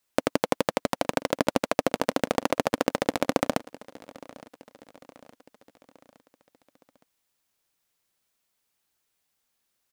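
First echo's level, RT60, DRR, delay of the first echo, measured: -21.0 dB, no reverb, no reverb, 865 ms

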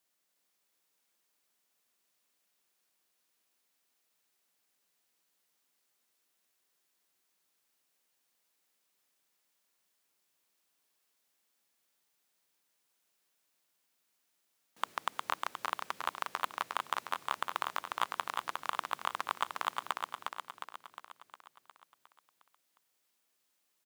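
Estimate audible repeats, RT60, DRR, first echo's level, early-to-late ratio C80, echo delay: 7, no reverb, no reverb, -4.0 dB, no reverb, 358 ms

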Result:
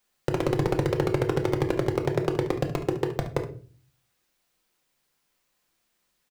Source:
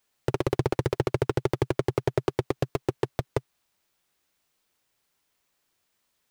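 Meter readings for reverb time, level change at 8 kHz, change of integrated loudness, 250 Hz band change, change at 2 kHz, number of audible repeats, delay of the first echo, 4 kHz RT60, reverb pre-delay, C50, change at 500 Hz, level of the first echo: 0.40 s, +1.0 dB, +2.0 dB, +3.0 dB, +1.5 dB, 1, 71 ms, 0.30 s, 4 ms, 9.5 dB, +1.5 dB, -12.5 dB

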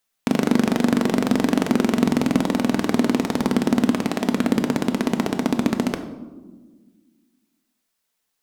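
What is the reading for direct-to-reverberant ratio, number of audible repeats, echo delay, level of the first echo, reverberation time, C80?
6.0 dB, no echo, no echo, no echo, 1.4 s, 12.0 dB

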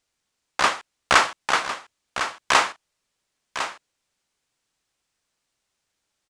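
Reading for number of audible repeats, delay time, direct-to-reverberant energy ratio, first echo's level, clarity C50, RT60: 1, 1054 ms, no reverb, -10.0 dB, no reverb, no reverb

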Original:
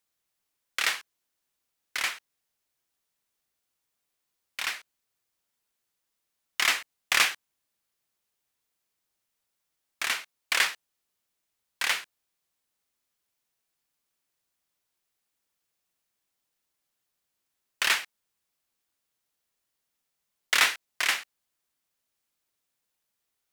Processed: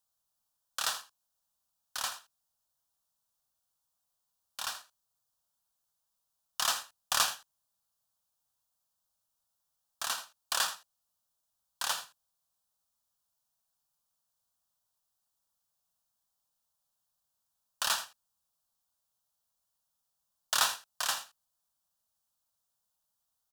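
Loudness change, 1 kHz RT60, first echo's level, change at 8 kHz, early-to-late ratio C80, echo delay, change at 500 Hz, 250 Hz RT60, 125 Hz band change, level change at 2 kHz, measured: -5.5 dB, no reverb, -13.5 dB, -1.0 dB, no reverb, 81 ms, -3.5 dB, no reverb, no reading, -11.5 dB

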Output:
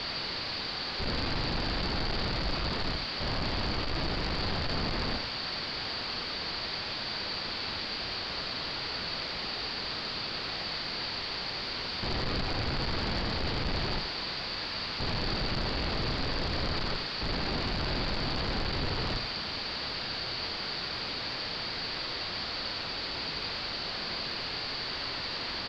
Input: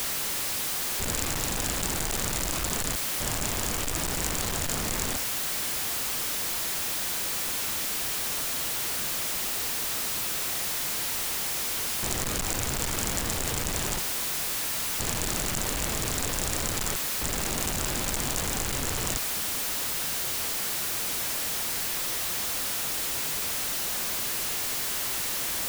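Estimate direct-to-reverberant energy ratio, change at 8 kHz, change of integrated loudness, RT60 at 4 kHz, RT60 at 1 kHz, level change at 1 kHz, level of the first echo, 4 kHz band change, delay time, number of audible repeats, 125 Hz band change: no reverb, -28.0 dB, -5.0 dB, no reverb, no reverb, -0.5 dB, -7.5 dB, +1.0 dB, 85 ms, 1, +0.5 dB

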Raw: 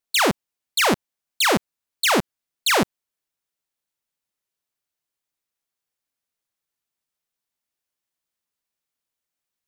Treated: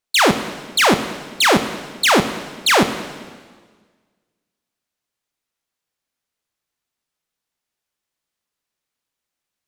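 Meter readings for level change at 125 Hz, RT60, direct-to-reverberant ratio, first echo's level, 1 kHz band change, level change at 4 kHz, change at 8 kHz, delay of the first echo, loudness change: +5.5 dB, 1.6 s, 9.0 dB, no echo, +5.5 dB, +5.0 dB, +3.0 dB, no echo, +4.5 dB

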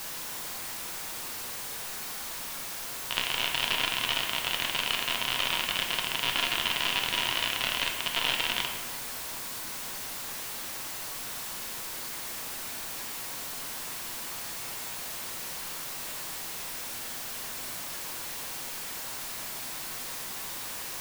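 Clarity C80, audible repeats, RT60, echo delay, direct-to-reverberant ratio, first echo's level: 6.5 dB, no echo, 1.5 s, no echo, 1.5 dB, no echo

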